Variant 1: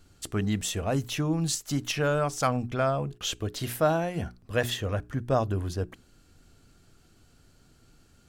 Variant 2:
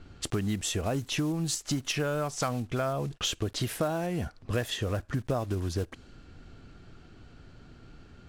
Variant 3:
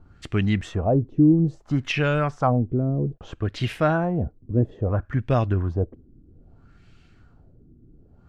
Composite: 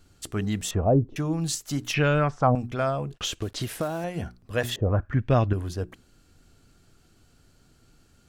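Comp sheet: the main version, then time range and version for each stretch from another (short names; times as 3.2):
1
0.71–1.16 from 3
1.94–2.55 from 3
3.14–4.04 from 2
4.76–5.53 from 3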